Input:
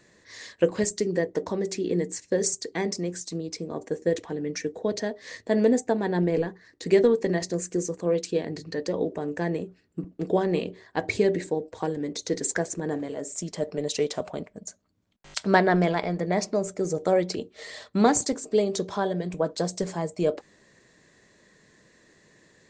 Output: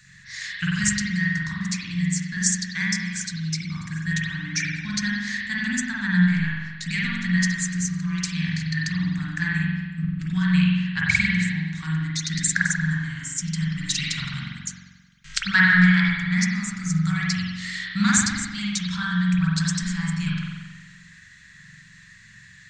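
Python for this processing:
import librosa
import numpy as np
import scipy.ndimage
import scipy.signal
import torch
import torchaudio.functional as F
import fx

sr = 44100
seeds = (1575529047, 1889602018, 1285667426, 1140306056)

y = scipy.signal.sosfilt(scipy.signal.cheby1(3, 1.0, [160.0, 1500.0], 'bandstop', fs=sr, output='sos'), x)
y = fx.rider(y, sr, range_db=3, speed_s=2.0)
y = fx.rev_spring(y, sr, rt60_s=1.3, pass_ms=(44,), chirp_ms=50, drr_db=-5.0)
y = y * 10.0 ** (6.0 / 20.0)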